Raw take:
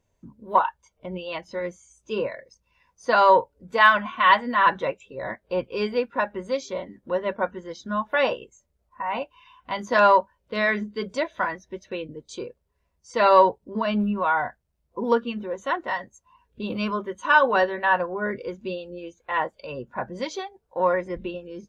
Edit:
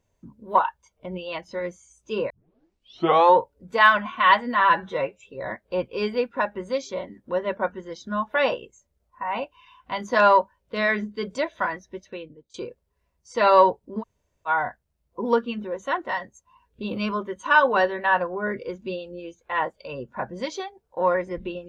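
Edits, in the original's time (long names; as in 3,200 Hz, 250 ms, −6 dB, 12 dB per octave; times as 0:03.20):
0:02.30: tape start 1.08 s
0:04.60–0:05.02: time-stretch 1.5×
0:11.67–0:12.33: fade out, to −22 dB
0:13.80–0:14.27: fill with room tone, crossfade 0.06 s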